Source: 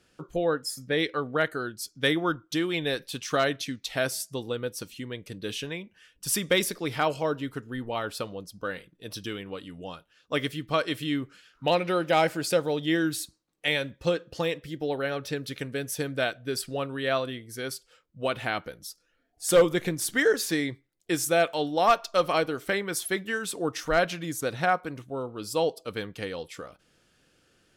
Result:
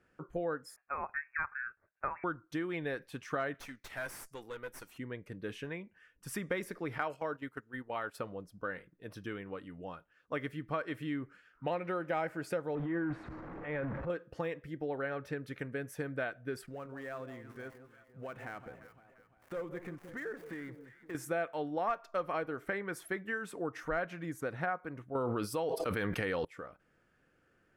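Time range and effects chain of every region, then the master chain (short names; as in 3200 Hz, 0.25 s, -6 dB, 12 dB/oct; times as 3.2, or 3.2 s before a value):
0.76–2.24 HPF 820 Hz 24 dB/oct + inverted band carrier 3000 Hz
3.54–4.98 tilt +3.5 dB/oct + tube stage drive 29 dB, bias 0.55
6.98–8.17 tilt +2 dB/oct + gate -38 dBFS, range -11 dB
12.75–14.1 zero-crossing step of -31 dBFS + LPF 1500 Hz + transient shaper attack -10 dB, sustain +6 dB
16.66–21.15 switching dead time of 0.093 ms + compressor 2.5:1, threshold -39 dBFS + echo with dull and thin repeats by turns 0.173 s, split 1000 Hz, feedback 66%, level -10 dB
25.15–26.45 high shelf 2100 Hz +8 dB + notch 7200 Hz, Q 5.8 + fast leveller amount 100%
whole clip: resonant high shelf 2600 Hz -12 dB, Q 1.5; compressor 2.5:1, threshold -28 dBFS; gain -5.5 dB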